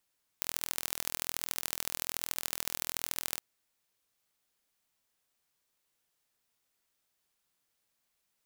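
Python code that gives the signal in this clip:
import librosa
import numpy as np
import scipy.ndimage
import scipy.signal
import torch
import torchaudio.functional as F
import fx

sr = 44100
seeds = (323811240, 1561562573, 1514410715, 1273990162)

y = fx.impulse_train(sr, length_s=2.98, per_s=41.2, accent_every=3, level_db=-4.0)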